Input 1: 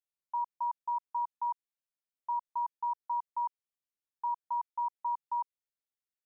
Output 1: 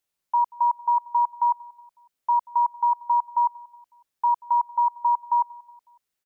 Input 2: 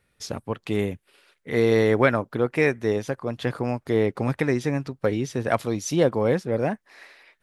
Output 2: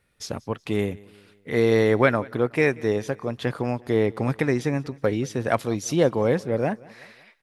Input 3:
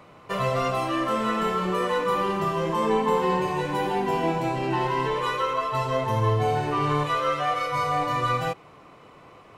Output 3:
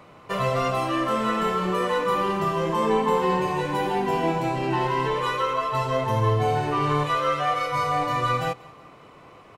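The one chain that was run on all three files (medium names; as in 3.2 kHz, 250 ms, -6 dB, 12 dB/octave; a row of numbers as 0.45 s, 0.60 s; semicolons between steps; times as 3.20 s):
feedback delay 184 ms, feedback 48%, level -23 dB; normalise loudness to -24 LUFS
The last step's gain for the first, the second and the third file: +12.0 dB, 0.0 dB, +1.0 dB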